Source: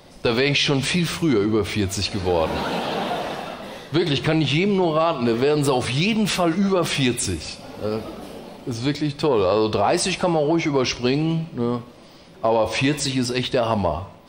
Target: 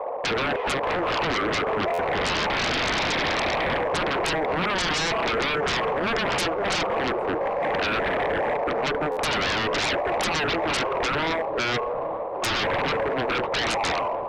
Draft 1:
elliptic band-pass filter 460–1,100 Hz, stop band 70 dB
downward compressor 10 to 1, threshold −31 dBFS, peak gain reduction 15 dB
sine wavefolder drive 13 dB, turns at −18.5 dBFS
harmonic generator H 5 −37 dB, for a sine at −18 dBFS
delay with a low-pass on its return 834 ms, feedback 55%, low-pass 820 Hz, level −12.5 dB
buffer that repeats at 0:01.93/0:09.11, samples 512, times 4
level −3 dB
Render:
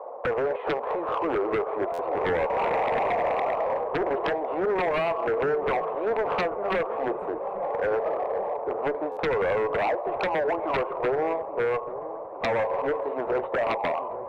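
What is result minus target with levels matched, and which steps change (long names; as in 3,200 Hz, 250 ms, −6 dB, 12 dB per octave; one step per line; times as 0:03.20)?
sine wavefolder: distortion −19 dB
change: sine wavefolder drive 22 dB, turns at −18.5 dBFS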